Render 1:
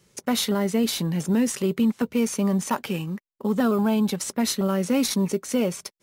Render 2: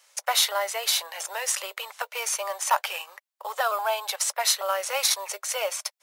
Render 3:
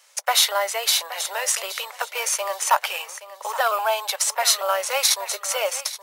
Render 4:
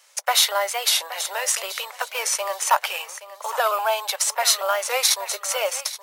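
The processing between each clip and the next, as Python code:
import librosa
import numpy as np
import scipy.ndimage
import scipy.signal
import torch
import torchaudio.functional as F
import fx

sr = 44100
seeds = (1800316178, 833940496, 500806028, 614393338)

y1 = scipy.signal.sosfilt(scipy.signal.butter(8, 600.0, 'highpass', fs=sr, output='sos'), x)
y1 = y1 * 10.0 ** (5.0 / 20.0)
y2 = fx.echo_feedback(y1, sr, ms=823, feedback_pct=26, wet_db=-14.5)
y2 = y2 * 10.0 ** (4.0 / 20.0)
y3 = fx.record_warp(y2, sr, rpm=45.0, depth_cents=100.0)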